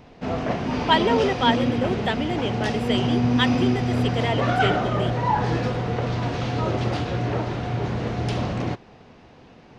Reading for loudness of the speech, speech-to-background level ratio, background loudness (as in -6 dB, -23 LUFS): -26.0 LUFS, -1.5 dB, -24.5 LUFS